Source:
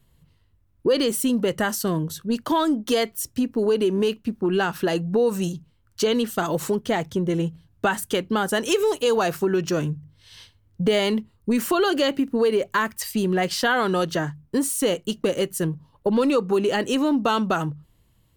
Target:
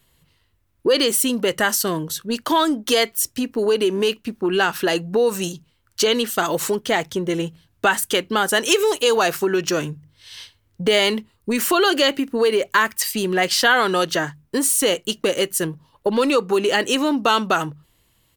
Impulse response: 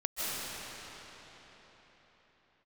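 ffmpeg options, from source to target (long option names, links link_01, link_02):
-af "firequalizer=gain_entry='entry(160,0);entry(340,6);entry(2000,12)':delay=0.05:min_phase=1,volume=-4dB"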